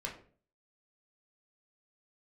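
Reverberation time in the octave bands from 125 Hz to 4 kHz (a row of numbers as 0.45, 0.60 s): 0.60, 0.55, 0.50, 0.40, 0.40, 0.30 s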